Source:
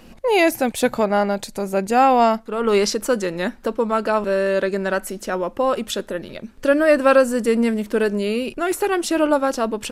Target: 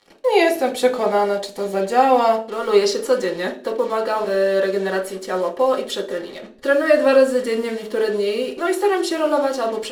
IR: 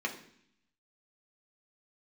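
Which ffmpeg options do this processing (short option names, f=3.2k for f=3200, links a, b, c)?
-filter_complex "[0:a]acrusher=bits=5:mix=0:aa=0.5[a];[1:a]atrim=start_sample=2205,asetrate=74970,aresample=44100[b];[a][b]afir=irnorm=-1:irlink=0"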